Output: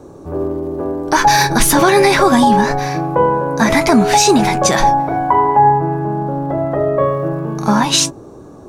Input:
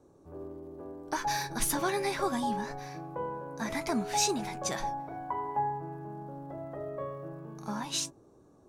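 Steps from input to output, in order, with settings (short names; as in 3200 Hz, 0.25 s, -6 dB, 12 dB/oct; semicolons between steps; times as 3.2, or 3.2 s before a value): high shelf 5800 Hz -4 dB, from 5.35 s -10.5 dB, from 7.04 s -5 dB; maximiser +24 dB; gain -1 dB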